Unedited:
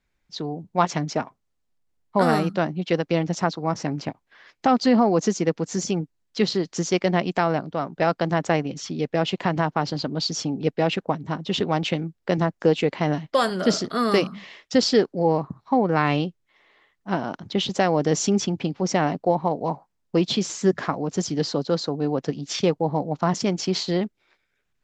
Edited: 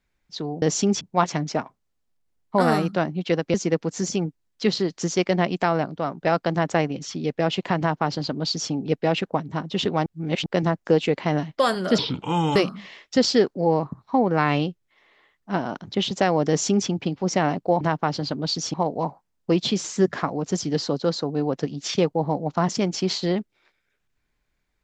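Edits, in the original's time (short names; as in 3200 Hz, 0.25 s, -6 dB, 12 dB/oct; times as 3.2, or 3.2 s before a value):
3.15–5.29 cut
9.54–10.47 copy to 19.39
11.81–12.21 reverse
13.73–14.14 speed 71%
18.07–18.46 copy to 0.62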